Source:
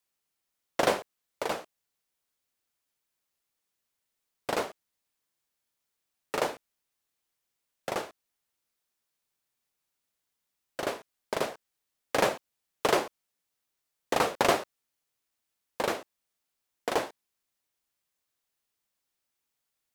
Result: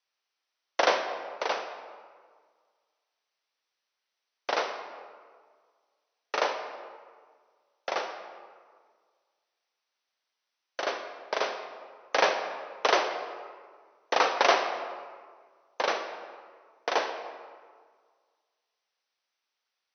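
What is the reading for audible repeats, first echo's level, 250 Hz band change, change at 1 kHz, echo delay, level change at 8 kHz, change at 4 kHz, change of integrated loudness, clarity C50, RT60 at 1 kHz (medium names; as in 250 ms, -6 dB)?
no echo, no echo, -6.0 dB, +4.0 dB, no echo, -2.0 dB, +4.0 dB, +1.5 dB, 7.0 dB, 1.7 s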